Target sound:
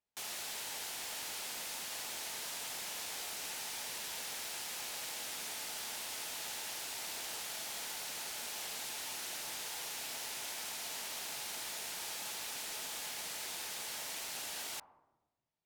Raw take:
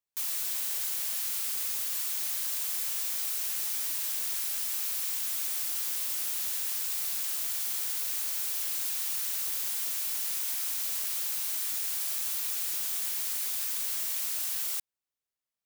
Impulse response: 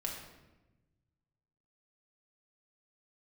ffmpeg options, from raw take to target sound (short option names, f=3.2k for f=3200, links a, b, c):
-filter_complex "[0:a]aemphasis=mode=reproduction:type=50fm,asplit=2[a][b];[b]lowpass=f=910:t=q:w=4.3[c];[1:a]atrim=start_sample=2205[d];[c][d]afir=irnorm=-1:irlink=0,volume=-11dB[e];[a][e]amix=inputs=2:normalize=0,volume=1.5dB"